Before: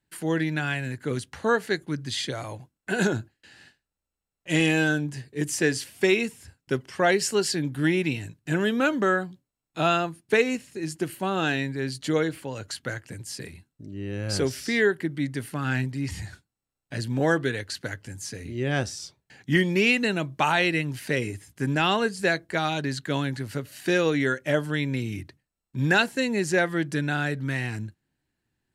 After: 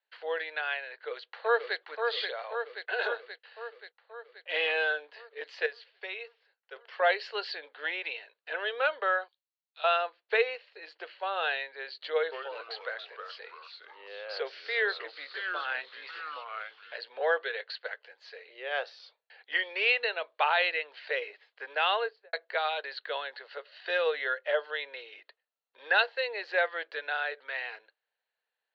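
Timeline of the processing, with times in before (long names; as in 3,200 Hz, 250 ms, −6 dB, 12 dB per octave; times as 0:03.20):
0:00.91–0:01.79: delay throw 530 ms, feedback 65%, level −4.5 dB
0:05.66–0:06.76: clip gain −9.5 dB
0:09.28–0:09.84: resonant band-pass 5,800 Hz, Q 1.2
0:12.14–0:16.96: delay with pitch and tempo change per echo 176 ms, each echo −3 semitones, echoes 3, each echo −6 dB
0:21.92–0:22.33: fade out and dull
0:23.08–0:26.16: notch filter 2,300 Hz
whole clip: Chebyshev band-pass filter 460–4,400 Hz, order 5; level −2.5 dB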